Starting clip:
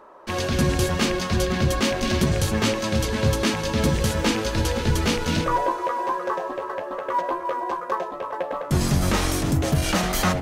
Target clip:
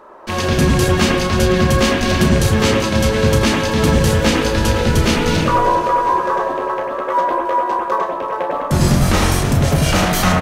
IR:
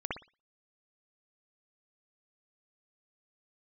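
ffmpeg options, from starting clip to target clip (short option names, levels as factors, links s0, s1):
-filter_complex "[0:a]aecho=1:1:386|772|1158|1544:0.178|0.0765|0.0329|0.0141,asplit=2[s0][s1];[1:a]atrim=start_sample=2205,adelay=32[s2];[s1][s2]afir=irnorm=-1:irlink=0,volume=0.562[s3];[s0][s3]amix=inputs=2:normalize=0,volume=1.78"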